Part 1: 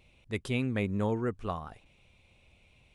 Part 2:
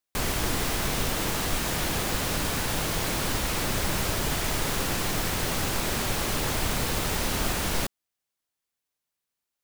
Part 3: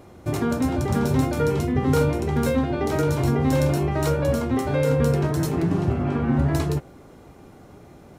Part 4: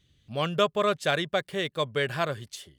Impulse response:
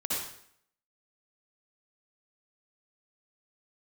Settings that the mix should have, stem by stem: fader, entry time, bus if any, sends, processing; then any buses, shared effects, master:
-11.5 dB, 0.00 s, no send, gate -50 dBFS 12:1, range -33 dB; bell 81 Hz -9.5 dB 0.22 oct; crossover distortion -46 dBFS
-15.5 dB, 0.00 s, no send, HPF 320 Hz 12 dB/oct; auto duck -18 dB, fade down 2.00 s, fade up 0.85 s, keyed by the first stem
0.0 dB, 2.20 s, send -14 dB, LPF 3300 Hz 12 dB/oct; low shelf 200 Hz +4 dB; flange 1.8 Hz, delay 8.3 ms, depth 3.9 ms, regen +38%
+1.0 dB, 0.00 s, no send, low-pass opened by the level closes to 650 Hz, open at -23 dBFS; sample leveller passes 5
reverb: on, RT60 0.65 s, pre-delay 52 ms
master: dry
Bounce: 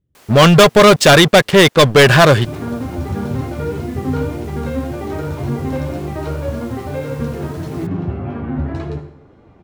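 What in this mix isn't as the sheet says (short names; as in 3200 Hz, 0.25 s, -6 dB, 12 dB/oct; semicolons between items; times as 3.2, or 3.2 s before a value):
stem 1 -11.5 dB -> -21.0 dB; stem 4 +1.0 dB -> +7.5 dB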